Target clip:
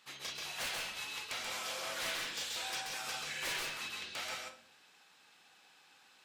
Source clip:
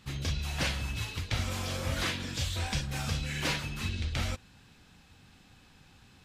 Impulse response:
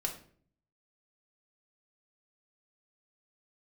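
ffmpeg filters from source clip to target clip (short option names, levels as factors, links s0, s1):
-filter_complex "[0:a]highpass=620,aeval=exprs='0.0335*(abs(mod(val(0)/0.0335+3,4)-2)-1)':c=same,asplit=2[s0][s1];[1:a]atrim=start_sample=2205,adelay=132[s2];[s1][s2]afir=irnorm=-1:irlink=0,volume=0.668[s3];[s0][s3]amix=inputs=2:normalize=0,volume=0.668"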